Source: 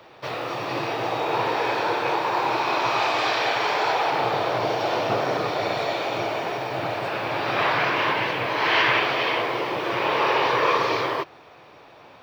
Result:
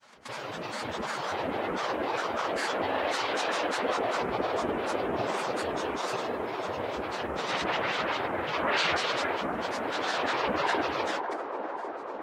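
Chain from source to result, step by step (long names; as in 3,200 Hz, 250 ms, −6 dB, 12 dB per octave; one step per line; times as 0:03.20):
granular cloud, grains 20 per second, pitch spread up and down by 12 semitones
delay with a band-pass on its return 550 ms, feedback 71%, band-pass 620 Hz, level −4.5 dB
level −6.5 dB
Ogg Vorbis 48 kbit/s 48,000 Hz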